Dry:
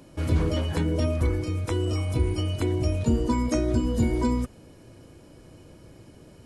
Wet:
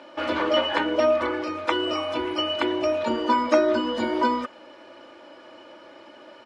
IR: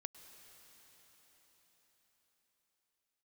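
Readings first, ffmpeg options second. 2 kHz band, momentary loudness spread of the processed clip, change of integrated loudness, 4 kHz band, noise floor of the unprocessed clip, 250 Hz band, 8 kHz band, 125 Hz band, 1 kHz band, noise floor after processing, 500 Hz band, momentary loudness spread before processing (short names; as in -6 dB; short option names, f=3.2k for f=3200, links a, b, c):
+11.0 dB, 7 LU, +2.0 dB, +11.0 dB, -51 dBFS, -0.5 dB, n/a, -23.5 dB, +12.0 dB, -48 dBFS, +7.5 dB, 3 LU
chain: -filter_complex "[0:a]highpass=770,lowpass=3k,equalizer=f=2.1k:w=1.5:g=-2,aecho=1:1:3.4:0.69,asplit=2[a][b];[1:a]atrim=start_sample=2205,atrim=end_sample=3969,lowpass=5.4k[c];[b][c]afir=irnorm=-1:irlink=0,volume=6dB[d];[a][d]amix=inputs=2:normalize=0,volume=7dB"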